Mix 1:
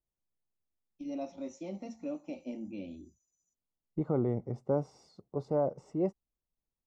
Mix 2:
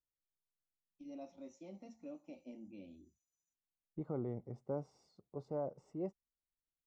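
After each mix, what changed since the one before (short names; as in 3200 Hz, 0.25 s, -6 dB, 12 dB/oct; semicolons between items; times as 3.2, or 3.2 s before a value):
first voice -11.0 dB; second voice -10.0 dB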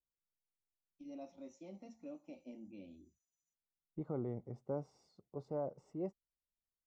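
none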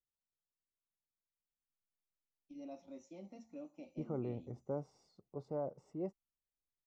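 first voice: entry +1.50 s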